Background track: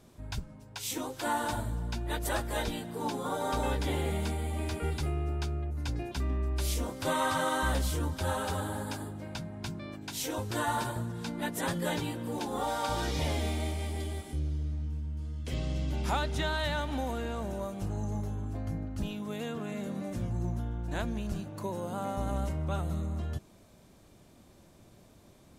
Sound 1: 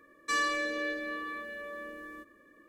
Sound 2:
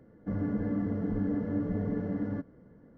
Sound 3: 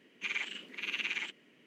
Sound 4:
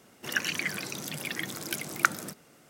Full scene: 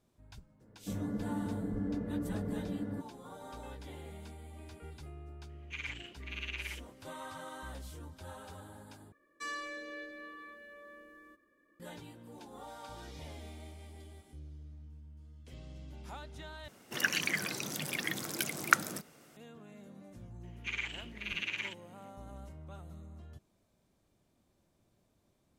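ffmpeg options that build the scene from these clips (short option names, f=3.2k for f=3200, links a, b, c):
-filter_complex "[3:a]asplit=2[a][b];[0:a]volume=-16dB,asplit=3[c][d][e];[c]atrim=end=9.124[f];[1:a]atrim=end=2.68,asetpts=PTS-STARTPTS,volume=-11dB[g];[d]atrim=start=11.796:end=16.684[h];[4:a]atrim=end=2.69,asetpts=PTS-STARTPTS,volume=-1.5dB[i];[e]atrim=start=19.366[j];[2:a]atrim=end=2.97,asetpts=PTS-STARTPTS,volume=-5.5dB,afade=t=in:d=0.004:c=hsin,afade=t=out:st=2.966:d=0.004:c=hsin,adelay=600[k];[a]atrim=end=1.66,asetpts=PTS-STARTPTS,volume=-6dB,afade=t=in:d=0.004:c=hsin,afade=t=out:st=1.656:d=0.004:c=hsin,adelay=242109S[l];[b]atrim=end=1.66,asetpts=PTS-STARTPTS,volume=-2dB,afade=t=in:d=0.004:c=hsin,afade=t=out:st=1.656:d=0.004:c=hsin,adelay=20430[m];[f][g]acrossfade=d=0.004:c1=hsin:c2=hsin[n];[n][h]acrossfade=d=0.004:c1=hsin:c2=hsin[o];[o][i]acrossfade=d=0.004:c1=hsin:c2=hsin[p];[p][j]acrossfade=d=0.004:c1=hsin:c2=hsin[q];[q][k][l][m]amix=inputs=4:normalize=0"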